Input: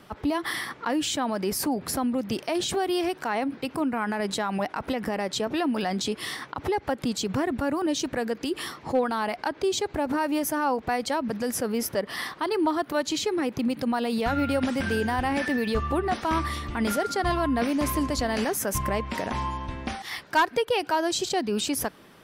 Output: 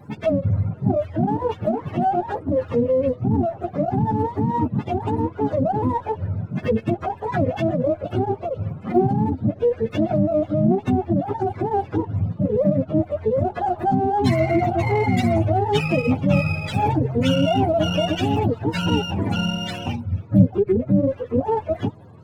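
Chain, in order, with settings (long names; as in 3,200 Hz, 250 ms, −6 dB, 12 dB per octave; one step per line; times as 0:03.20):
frequency axis turned over on the octave scale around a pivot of 430 Hz
dynamic equaliser 3,000 Hz, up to +3 dB, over −46 dBFS, Q 0.88
windowed peak hold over 3 samples
level +7.5 dB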